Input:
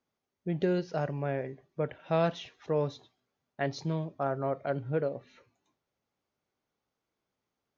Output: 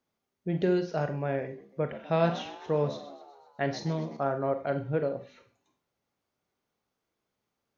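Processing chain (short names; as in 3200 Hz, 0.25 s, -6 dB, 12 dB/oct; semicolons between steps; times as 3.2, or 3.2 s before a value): 1.47–4.17 frequency-shifting echo 0.126 s, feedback 61%, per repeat +68 Hz, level -15.5 dB; Schroeder reverb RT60 0.33 s, combs from 32 ms, DRR 8 dB; gain +1.5 dB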